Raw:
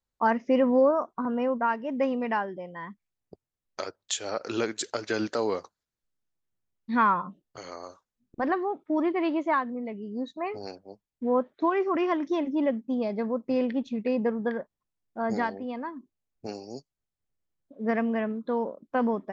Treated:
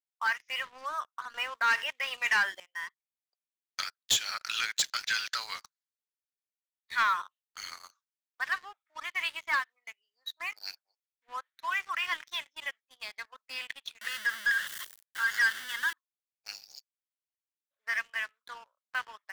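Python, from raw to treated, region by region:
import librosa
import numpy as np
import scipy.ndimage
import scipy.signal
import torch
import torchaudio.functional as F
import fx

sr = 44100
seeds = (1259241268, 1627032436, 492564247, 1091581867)

y = fx.chain(x, sr, fx.peak_eq(hz=390.0, db=6.0, octaves=1.3),
    fx.env_flatten(amount_pct=100), at=(1.34, 2.6))
y = fx.chain(y, sr, fx.zero_step(step_db=-34.5),
    fx.band_shelf(hz=2200.0, db=13.5, octaves=1.3),
    fx.fixed_phaser(hz=660.0, stages=6), at=(14.01, 15.93))
y = scipy.signal.sosfilt(scipy.signal.butter(4, 1500.0, 'highpass', fs=sr, output='sos'), y)
y = fx.dynamic_eq(y, sr, hz=3500.0, q=2.7, threshold_db=-57.0, ratio=4.0, max_db=5)
y = fx.leveller(y, sr, passes=3)
y = F.gain(torch.from_numpy(y), -4.0).numpy()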